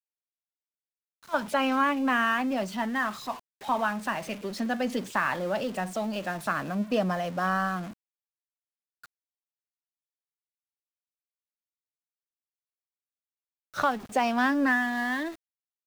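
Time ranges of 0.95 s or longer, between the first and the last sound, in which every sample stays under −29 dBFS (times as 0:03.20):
0:07.79–0:13.78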